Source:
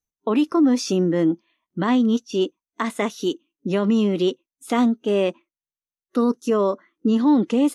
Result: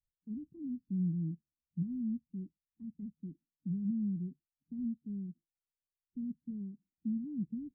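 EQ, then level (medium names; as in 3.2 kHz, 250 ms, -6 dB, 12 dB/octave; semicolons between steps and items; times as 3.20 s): inverse Chebyshev low-pass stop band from 510 Hz, stop band 60 dB; distance through air 420 m; 0.0 dB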